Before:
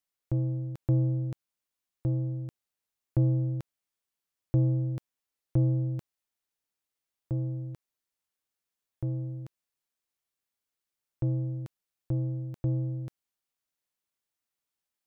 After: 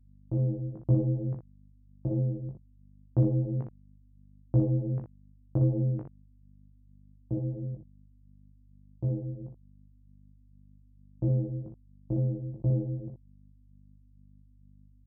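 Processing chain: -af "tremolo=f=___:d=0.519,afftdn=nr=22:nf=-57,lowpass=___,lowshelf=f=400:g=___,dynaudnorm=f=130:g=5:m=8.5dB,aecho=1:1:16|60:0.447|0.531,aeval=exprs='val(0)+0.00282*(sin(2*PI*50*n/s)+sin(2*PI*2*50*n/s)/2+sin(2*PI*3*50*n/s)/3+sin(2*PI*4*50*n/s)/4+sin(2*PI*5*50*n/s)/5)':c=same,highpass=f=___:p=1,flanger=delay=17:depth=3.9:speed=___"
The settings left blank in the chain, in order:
91, 1000, -2.5, 76, 2.2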